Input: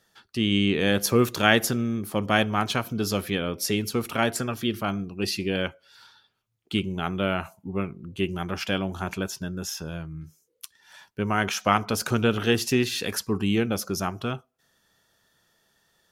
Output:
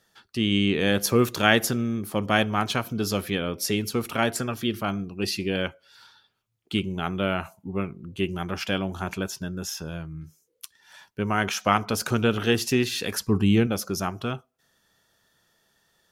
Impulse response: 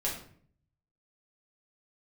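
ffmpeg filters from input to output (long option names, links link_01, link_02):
-filter_complex "[0:a]asettb=1/sr,asplit=3[link_01][link_02][link_03];[link_01]atrim=end=13.214[link_04];[link_02]atrim=start=13.21:end=13.67,asetpts=PTS-STARTPTS,afade=type=in:duration=0.004:curve=qsin,afade=type=out:start_time=0.456:duration=0.004:curve=qsin,lowshelf=frequency=200:gain=9[link_05];[link_03]atrim=start=13.666[link_06];[link_04][link_05]acrossfade=duration=0.004:curve1=hsin:curve2=qsin[link_07];[link_07][link_06]acrossfade=duration=0.004:curve1=qsin:curve2=hsin"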